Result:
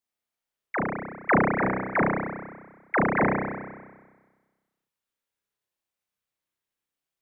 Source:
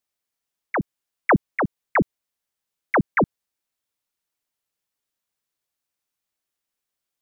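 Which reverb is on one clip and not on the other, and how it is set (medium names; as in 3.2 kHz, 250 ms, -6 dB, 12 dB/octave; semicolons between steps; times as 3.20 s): spring tank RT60 1.4 s, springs 31 ms, chirp 30 ms, DRR -3 dB; trim -6 dB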